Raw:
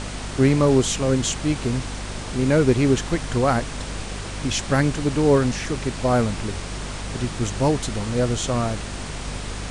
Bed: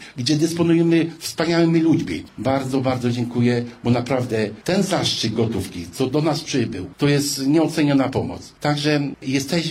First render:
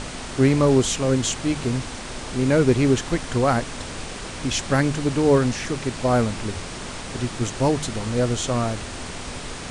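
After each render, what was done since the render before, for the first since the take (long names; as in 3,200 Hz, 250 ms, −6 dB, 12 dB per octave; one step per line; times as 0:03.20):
hum removal 50 Hz, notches 4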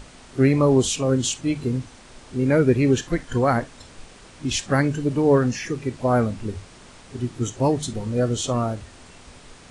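noise reduction from a noise print 13 dB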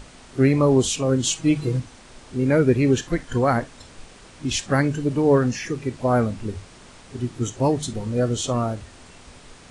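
0:01.26–0:01.80: comb filter 6.2 ms, depth 84%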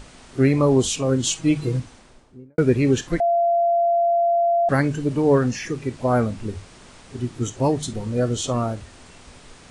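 0:01.78–0:02.58: fade out and dull
0:03.20–0:04.69: beep over 686 Hz −15.5 dBFS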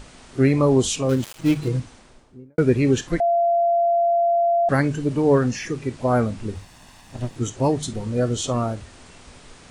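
0:01.09–0:01.68: gap after every zero crossing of 0.14 ms
0:06.55–0:07.36: lower of the sound and its delayed copy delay 1.1 ms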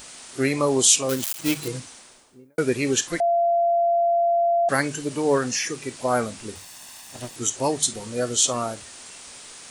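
RIAA equalisation recording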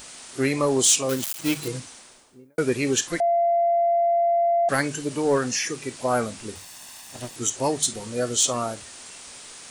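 soft clipping −9.5 dBFS, distortion −23 dB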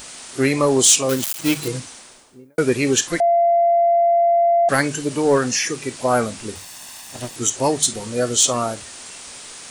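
level +5 dB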